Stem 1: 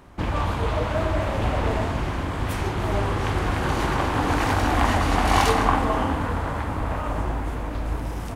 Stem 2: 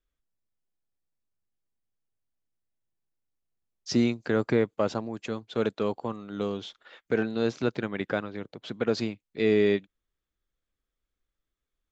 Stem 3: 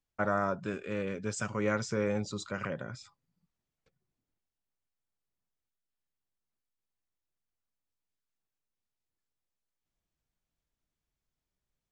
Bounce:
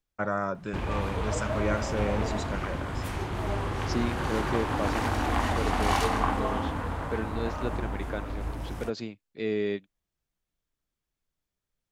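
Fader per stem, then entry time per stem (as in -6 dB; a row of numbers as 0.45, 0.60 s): -6.5, -6.5, +0.5 dB; 0.55, 0.00, 0.00 s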